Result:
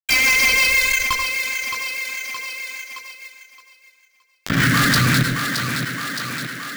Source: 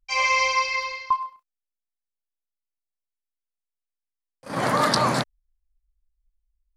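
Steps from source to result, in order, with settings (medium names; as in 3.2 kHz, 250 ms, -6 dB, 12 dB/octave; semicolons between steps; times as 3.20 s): local Wiener filter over 9 samples; Chebyshev band-stop 270–1500 Hz, order 3; peaking EQ 220 Hz -9 dB 0.66 oct; fuzz box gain 33 dB, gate -41 dBFS; rotary cabinet horn 6 Hz; careless resampling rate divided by 2×, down none, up hold; thinning echo 619 ms, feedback 24%, high-pass 180 Hz, level -22 dB; on a send at -16 dB: reverberation RT60 0.20 s, pre-delay 81 ms; on the sum: level flattener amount 70%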